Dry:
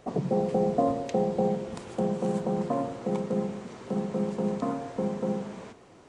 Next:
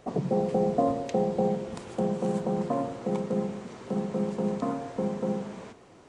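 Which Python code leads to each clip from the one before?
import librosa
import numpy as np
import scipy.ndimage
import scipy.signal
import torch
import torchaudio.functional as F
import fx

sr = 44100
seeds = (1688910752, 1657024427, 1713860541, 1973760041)

y = x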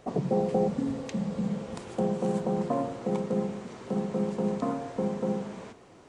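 y = fx.spec_repair(x, sr, seeds[0], start_s=0.7, length_s=0.98, low_hz=340.0, high_hz=1400.0, source='after')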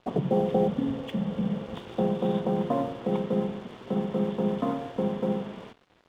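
y = fx.freq_compress(x, sr, knee_hz=2700.0, ratio=4.0)
y = fx.air_absorb(y, sr, metres=130.0)
y = np.sign(y) * np.maximum(np.abs(y) - 10.0 ** (-51.5 / 20.0), 0.0)
y = y * librosa.db_to_amplitude(2.5)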